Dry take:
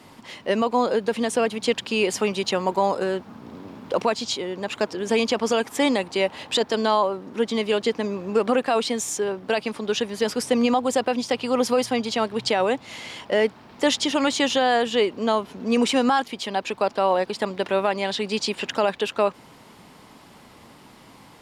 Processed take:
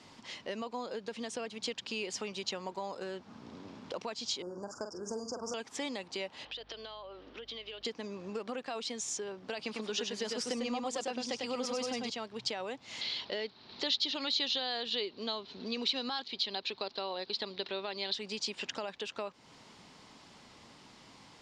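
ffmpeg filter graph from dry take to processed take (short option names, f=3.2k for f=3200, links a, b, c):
-filter_complex "[0:a]asettb=1/sr,asplit=3[a][b][c];[a]atrim=end=4.424[d];[b]atrim=start=4.42:end=5.54,asetpts=PTS-STARTPTS,afade=t=in:d=0.004:c=qsin,afade=t=out:st=1.116:d=0.004:c=qsin,asubboost=boost=9.5:cutoff=93,asuperstop=centerf=2800:order=20:qfactor=0.83,asplit=2[e][f];[f]adelay=45,volume=-7dB[g];[e][g]amix=inputs=2:normalize=0,atrim=end_sample=49392[h];[c]atrim=start=5.536[i];[d][h]acrossfade=d=0.004:c1=hsin:c2=qsin[j];[j][i]acrossfade=d=0.004:c1=qsin:c2=hsin,asettb=1/sr,asplit=3[k][l][m];[k]atrim=end=6.454[n];[l]atrim=start=6.45:end=7.85,asetpts=PTS-STARTPTS,afade=t=in:d=0.004:c=qsin,afade=t=out:st=1.396:d=0.004:c=qsin,highpass=f=310:w=0.5412,highpass=f=310:w=1.3066,equalizer=f=380:t=q:w=4:g=-4,equalizer=f=930:t=q:w=4:g=-6,equalizer=f=3.1k:t=q:w=4:g=7,lowpass=f=4.6k:w=0.5412,lowpass=f=4.6k:w=1.3066,acompressor=threshold=-34dB:ratio=10:attack=3.2:release=140:knee=1:detection=peak,aeval=exprs='val(0)+0.002*(sin(2*PI*50*n/s)+sin(2*PI*2*50*n/s)/2+sin(2*PI*3*50*n/s)/3+sin(2*PI*4*50*n/s)/4+sin(2*PI*5*50*n/s)/5)':c=same[o];[m]atrim=start=7.846[p];[n][o]acrossfade=d=0.004:c1=hsin:c2=qsin[q];[q][p]acrossfade=d=0.004:c1=qsin:c2=hsin,asettb=1/sr,asplit=3[r][s][t];[r]atrim=end=9.594[u];[s]atrim=start=9.59:end=12.1,asetpts=PTS-STARTPTS,afade=t=in:d=0.004:c=qsin,afade=t=out:st=2.506:d=0.004:c=qsin,highpass=120,acontrast=58,aecho=1:1:99:0.631,atrim=end_sample=110691[v];[t]atrim=start=12.096[w];[u][v]acrossfade=d=0.004:c1=hsin:c2=qsin[x];[x][w]acrossfade=d=0.004:c1=qsin:c2=hsin,asettb=1/sr,asplit=3[y][z][aa];[y]atrim=end=13.014[ab];[z]atrim=start=13.01:end=18.14,asetpts=PTS-STARTPTS,afade=t=in:d=0.004:c=qsin,afade=t=out:st=5.126:d=0.004:c=qsin,lowpass=f=4.1k:t=q:w=6.1,equalizer=f=390:t=o:w=0.23:g=6[ac];[aa]atrim=start=18.136[ad];[ab][ac]acrossfade=d=0.004:c1=hsin:c2=qsin[ae];[ae][ad]acrossfade=d=0.004:c1=qsin:c2=hsin,acompressor=threshold=-31dB:ratio=2.5,lowpass=f=6.2k:w=0.5412,lowpass=f=6.2k:w=1.3066,aemphasis=mode=production:type=75fm,volume=-8.5dB"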